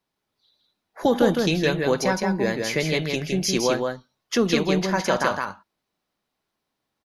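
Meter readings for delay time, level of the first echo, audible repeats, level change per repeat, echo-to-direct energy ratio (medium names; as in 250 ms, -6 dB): 162 ms, -4.0 dB, 1, no regular repeats, -4.0 dB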